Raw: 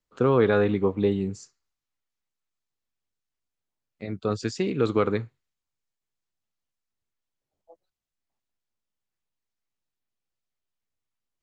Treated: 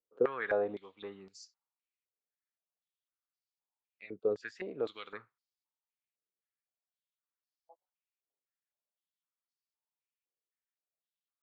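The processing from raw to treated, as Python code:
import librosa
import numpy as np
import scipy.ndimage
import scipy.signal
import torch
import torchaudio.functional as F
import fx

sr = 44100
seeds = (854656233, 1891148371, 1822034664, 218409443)

y = fx.filter_held_bandpass(x, sr, hz=3.9, low_hz=460.0, high_hz=4800.0)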